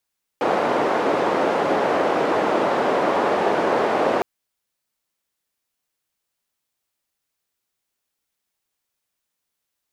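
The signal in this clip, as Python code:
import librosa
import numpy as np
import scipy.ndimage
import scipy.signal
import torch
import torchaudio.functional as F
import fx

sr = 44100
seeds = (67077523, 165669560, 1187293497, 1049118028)

y = fx.band_noise(sr, seeds[0], length_s=3.81, low_hz=410.0, high_hz=600.0, level_db=-20.0)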